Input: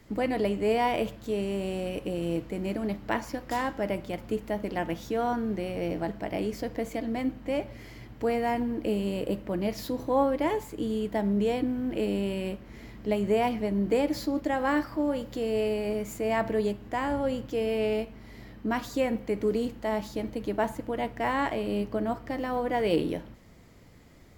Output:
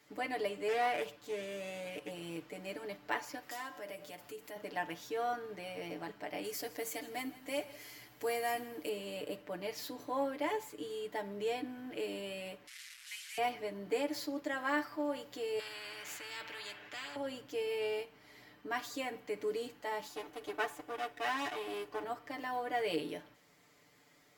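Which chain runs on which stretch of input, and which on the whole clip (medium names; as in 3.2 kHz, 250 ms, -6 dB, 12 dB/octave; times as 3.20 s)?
0.68–2.11 s: high-pass 47 Hz 24 dB/octave + loudspeaker Doppler distortion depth 0.21 ms
3.42–4.56 s: treble shelf 5.7 kHz +9 dB + de-hum 45.73 Hz, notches 23 + compression 2:1, threshold -38 dBFS
6.44–8.89 s: peaking EQ 13 kHz +13.5 dB 1.6 oct + delay 161 ms -18.5 dB
12.67–13.38 s: one-bit delta coder 64 kbps, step -35 dBFS + inverse Chebyshev band-stop 100–580 Hz, stop band 60 dB
15.59–17.16 s: FFT filter 130 Hz 0 dB, 1.1 kHz -18 dB, 1.7 kHz -7 dB, 3.1 kHz -12 dB, 10 kHz -25 dB + spectrum-flattening compressor 4:1
20.08–22.04 s: comb filter that takes the minimum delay 2.7 ms + band-stop 4.3 kHz, Q 15
whole clip: high-pass 890 Hz 6 dB/octave; comb 6.8 ms, depth 83%; trim -5.5 dB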